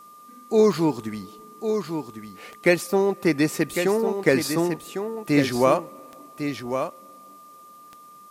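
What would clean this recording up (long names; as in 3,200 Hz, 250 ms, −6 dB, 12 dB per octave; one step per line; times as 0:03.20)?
click removal
notch filter 1,200 Hz, Q 30
downward expander −39 dBFS, range −21 dB
echo removal 1,102 ms −7.5 dB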